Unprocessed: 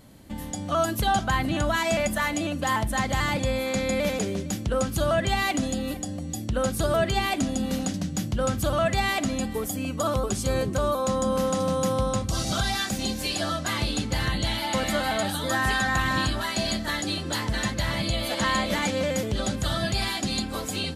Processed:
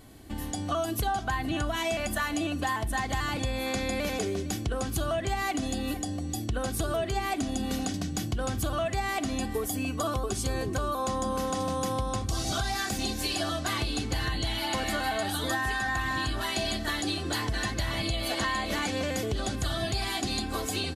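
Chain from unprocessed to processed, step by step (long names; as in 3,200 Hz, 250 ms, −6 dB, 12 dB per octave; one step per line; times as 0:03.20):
comb filter 2.7 ms, depth 51%
downward compressor, threshold −26 dBFS, peak gain reduction 9.5 dB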